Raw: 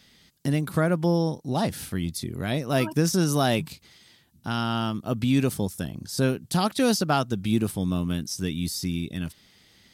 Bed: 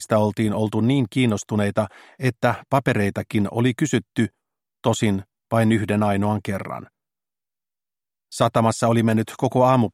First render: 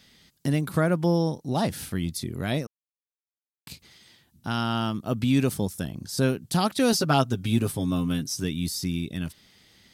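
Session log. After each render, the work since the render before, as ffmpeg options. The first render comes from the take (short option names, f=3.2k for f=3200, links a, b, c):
-filter_complex "[0:a]asettb=1/sr,asplit=3[a][b][c];[a]atrim=end=6.924[d];[b]atrim=start=6.92:end=8.44,asetpts=PTS-STARTPTS,afade=t=in:d=0.004:c=qsin,afade=t=out:st=1.516:d=0.004:c=qsin,aecho=1:1:7.5:0.65,atrim=end_sample=67032[e];[c]atrim=start=8.436[f];[d][e]acrossfade=d=0.004:c1=hsin:c2=qsin[g];[g][f]acrossfade=d=0.004:c1=qsin:c2=hsin,asplit=3[h][i][j];[h]atrim=end=2.67,asetpts=PTS-STARTPTS,afade=t=out:st=2.666:d=0.004:c=hsin[k];[i]atrim=start=2.67:end=3.67,asetpts=PTS-STARTPTS,volume=0[l];[j]atrim=start=3.67,asetpts=PTS-STARTPTS,afade=t=in:d=0.004:c=hsin[m];[k][l][m]concat=n=3:v=0:a=1"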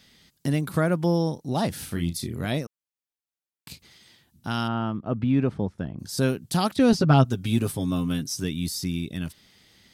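-filter_complex "[0:a]asettb=1/sr,asplit=3[a][b][c];[a]atrim=end=1.854[d];[b]atrim=start=1.85:end=2.46,asetpts=PTS-STARTPTS,afade=t=in:d=0.004:c=qsin,afade=t=out:st=0.606:d=0.004:c=qsin,asplit=2[e][f];[f]adelay=35,volume=-7dB[g];[e][g]amix=inputs=2:normalize=0,atrim=end_sample=26901[h];[c]atrim=start=2.456[i];[d][h]acrossfade=d=0.004:c1=hsin:c2=qsin[j];[j][i]acrossfade=d=0.004:c1=qsin:c2=hsin,asplit=3[k][l][m];[k]afade=t=out:st=4.67:d=0.02[n];[l]lowpass=1.7k,afade=t=in:st=4.67:d=0.02,afade=t=out:st=5.98:d=0.02[o];[m]afade=t=in:st=5.98:d=0.02[p];[n][o][p]amix=inputs=3:normalize=0,asettb=1/sr,asplit=3[q][r][s];[q]atrim=end=6.764[t];[r]atrim=start=6.76:end=7.25,asetpts=PTS-STARTPTS,afade=t=in:d=0.004:c=qsin,afade=t=out:st=0.486:d=0.004:c=qsin,aemphasis=mode=reproduction:type=bsi[u];[s]atrim=start=7.246[v];[t][u]acrossfade=d=0.004:c1=hsin:c2=qsin[w];[w][v]acrossfade=d=0.004:c1=qsin:c2=hsin"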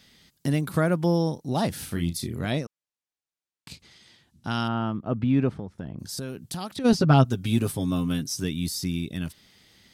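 -filter_complex "[0:a]asettb=1/sr,asplit=3[a][b][c];[a]atrim=end=2.394[d];[b]atrim=start=2.39:end=4.67,asetpts=PTS-STARTPTS,afade=t=in:d=0.004:c=qsin,afade=t=out:st=2.276:d=0.004:c=qsin,lowpass=8.8k[e];[c]atrim=start=4.666[f];[d][e]acrossfade=d=0.004:c1=hsin:c2=qsin[g];[g][f]acrossfade=d=0.004:c1=qsin:c2=hsin,asplit=3[h][i][j];[h]afade=t=out:st=5.54:d=0.02[k];[i]acompressor=threshold=-30dB:ratio=6:attack=3.2:release=140:knee=1:detection=peak,afade=t=in:st=5.54:d=0.02,afade=t=out:st=6.84:d=0.02[l];[j]afade=t=in:st=6.84:d=0.02[m];[k][l][m]amix=inputs=3:normalize=0"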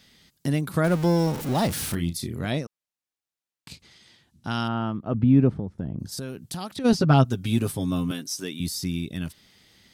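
-filter_complex "[0:a]asettb=1/sr,asplit=3[a][b][c];[a]atrim=end=0.844[d];[b]atrim=start=0.84:end=1.95,asetpts=PTS-STARTPTS,afade=t=in:d=0.004:c=qsin,afade=t=out:st=1.106:d=0.004:c=qsin,aeval=exprs='val(0)+0.5*0.0376*sgn(val(0))':c=same[e];[c]atrim=start=1.946[f];[d][e]acrossfade=d=0.004:c1=hsin:c2=qsin[g];[g][f]acrossfade=d=0.004:c1=qsin:c2=hsin,asettb=1/sr,asplit=3[h][i][j];[h]atrim=end=5.144[k];[i]atrim=start=5.14:end=6.12,asetpts=PTS-STARTPTS,afade=t=in:d=0.004:c=qsin,afade=t=out:st=0.976:d=0.004:c=qsin,tiltshelf=f=720:g=6[l];[j]atrim=start=6.116[m];[k][l]acrossfade=d=0.004:c1=hsin:c2=qsin[n];[n][m]acrossfade=d=0.004:c1=qsin:c2=hsin,asettb=1/sr,asplit=3[o][p][q];[o]atrim=end=8.114[r];[p]atrim=start=8.11:end=8.6,asetpts=PTS-STARTPTS,afade=t=in:d=0.004:c=qsin,afade=t=out:st=0.486:d=0.004:c=qsin,highpass=300[s];[q]atrim=start=8.596[t];[r][s]acrossfade=d=0.004:c1=hsin:c2=qsin[u];[u][t]acrossfade=d=0.004:c1=qsin:c2=hsin"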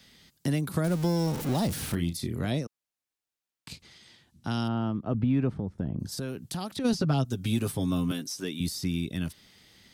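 -filter_complex "[0:a]acrossover=split=290|710|3700[a][b][c][d];[a]acompressor=threshold=-26dB:ratio=4[e];[b]acompressor=threshold=-33dB:ratio=4[f];[c]acompressor=threshold=-40dB:ratio=4[g];[d]acompressor=threshold=-37dB:ratio=4[h];[e][f][g][h]amix=inputs=4:normalize=0"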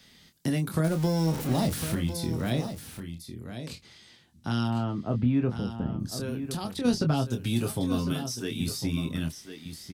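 -filter_complex "[0:a]asplit=2[a][b];[b]adelay=25,volume=-7dB[c];[a][c]amix=inputs=2:normalize=0,aecho=1:1:1053:0.316"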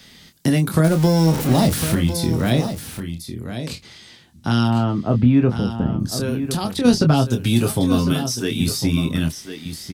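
-af "volume=10dB"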